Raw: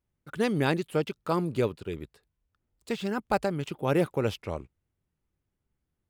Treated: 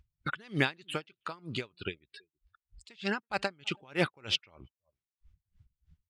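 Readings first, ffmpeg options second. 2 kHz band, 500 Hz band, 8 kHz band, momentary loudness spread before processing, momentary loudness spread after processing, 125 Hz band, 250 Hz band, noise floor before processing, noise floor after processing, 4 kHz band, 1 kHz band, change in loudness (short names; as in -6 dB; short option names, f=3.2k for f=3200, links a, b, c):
+2.0 dB, -10.0 dB, -2.0 dB, 12 LU, 11 LU, -8.0 dB, -8.5 dB, -83 dBFS, under -85 dBFS, +6.0 dB, -6.5 dB, -5.0 dB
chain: -filter_complex "[0:a]acontrast=46,asplit=2[a][b];[b]adelay=326.5,volume=-28dB,highshelf=f=4k:g=-7.35[c];[a][c]amix=inputs=2:normalize=0,acrusher=bits=7:mode=log:mix=0:aa=0.000001,tiltshelf=f=1.1k:g=-9,acompressor=mode=upward:threshold=-25dB:ratio=2.5,equalizer=f=480:w=2.5:g=-4,afftdn=nr=33:nf=-40,lowpass=4.4k,aeval=exprs='val(0)*pow(10,-32*(0.5-0.5*cos(2*PI*3.2*n/s))/20)':c=same,volume=2dB"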